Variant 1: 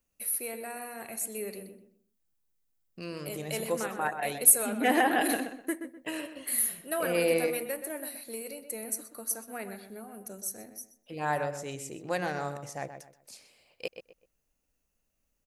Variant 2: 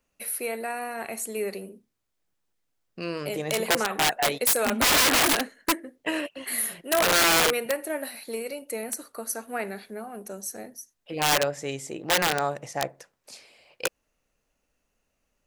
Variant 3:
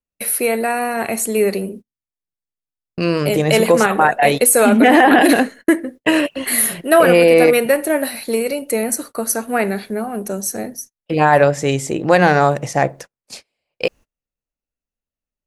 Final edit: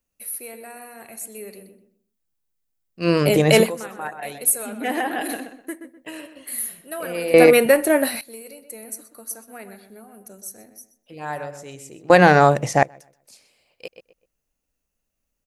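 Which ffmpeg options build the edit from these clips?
ffmpeg -i take0.wav -i take1.wav -i take2.wav -filter_complex "[2:a]asplit=3[link_01][link_02][link_03];[0:a]asplit=4[link_04][link_05][link_06][link_07];[link_04]atrim=end=3.09[link_08];[link_01]atrim=start=2.99:end=3.71[link_09];[link_05]atrim=start=3.61:end=7.342[link_10];[link_02]atrim=start=7.338:end=8.212[link_11];[link_06]atrim=start=8.208:end=12.102[link_12];[link_03]atrim=start=12.098:end=12.832[link_13];[link_07]atrim=start=12.828[link_14];[link_08][link_09]acrossfade=duration=0.1:curve1=tri:curve2=tri[link_15];[link_15][link_10]acrossfade=duration=0.1:curve1=tri:curve2=tri[link_16];[link_16][link_11]acrossfade=duration=0.004:curve1=hsin:curve2=hsin[link_17];[link_17][link_12]acrossfade=duration=0.004:curve1=hsin:curve2=hsin[link_18];[link_18][link_13]acrossfade=duration=0.004:curve1=hsin:curve2=hsin[link_19];[link_19][link_14]acrossfade=duration=0.004:curve1=hsin:curve2=hsin" out.wav

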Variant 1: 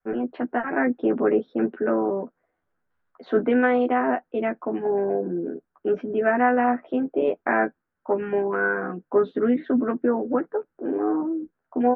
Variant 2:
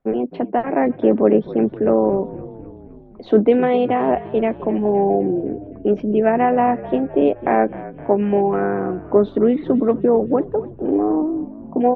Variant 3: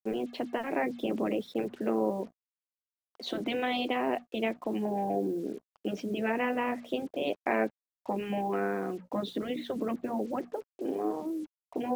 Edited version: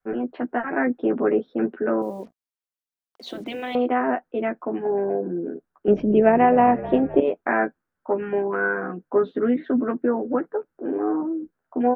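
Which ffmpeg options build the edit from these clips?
ffmpeg -i take0.wav -i take1.wav -i take2.wav -filter_complex "[0:a]asplit=3[link_01][link_02][link_03];[link_01]atrim=end=2.022[link_04];[2:a]atrim=start=2.018:end=3.752[link_05];[link_02]atrim=start=3.748:end=5.882[link_06];[1:a]atrim=start=5.878:end=7.202[link_07];[link_03]atrim=start=7.198[link_08];[link_04][link_05]acrossfade=duration=0.004:curve1=hsin:curve2=hsin[link_09];[link_09][link_06]acrossfade=duration=0.004:curve1=hsin:curve2=hsin[link_10];[link_10][link_07]acrossfade=duration=0.004:curve1=hsin:curve2=hsin[link_11];[link_11][link_08]acrossfade=duration=0.004:curve1=hsin:curve2=hsin" out.wav

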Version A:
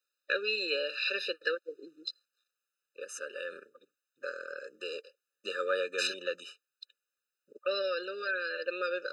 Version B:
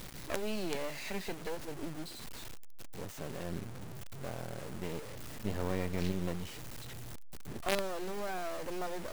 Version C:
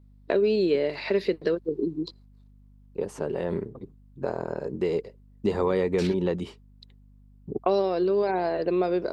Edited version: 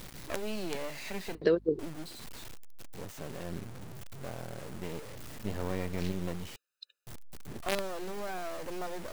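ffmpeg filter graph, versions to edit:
ffmpeg -i take0.wav -i take1.wav -i take2.wav -filter_complex "[1:a]asplit=3[link_01][link_02][link_03];[link_01]atrim=end=1.352[link_04];[2:a]atrim=start=1.348:end=1.792[link_05];[link_02]atrim=start=1.788:end=6.562[link_06];[0:a]atrim=start=6.558:end=7.072[link_07];[link_03]atrim=start=7.068[link_08];[link_04][link_05]acrossfade=duration=0.004:curve1=hsin:curve2=hsin[link_09];[link_09][link_06]acrossfade=duration=0.004:curve1=hsin:curve2=hsin[link_10];[link_10][link_07]acrossfade=duration=0.004:curve1=hsin:curve2=hsin[link_11];[link_11][link_08]acrossfade=duration=0.004:curve1=hsin:curve2=hsin" out.wav

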